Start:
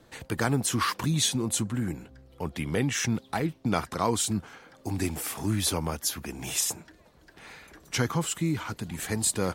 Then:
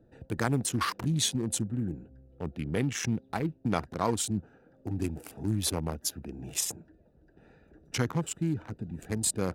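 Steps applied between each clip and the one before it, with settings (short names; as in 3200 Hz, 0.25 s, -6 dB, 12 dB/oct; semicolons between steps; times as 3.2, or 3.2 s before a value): Wiener smoothing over 41 samples; gain -1.5 dB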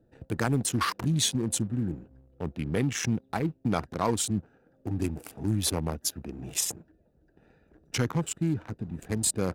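sample leveller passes 1; gain -1.5 dB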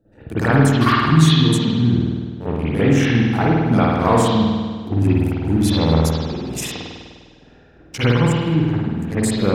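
reverb RT60 1.6 s, pre-delay 50 ms, DRR -14 dB; gain -1 dB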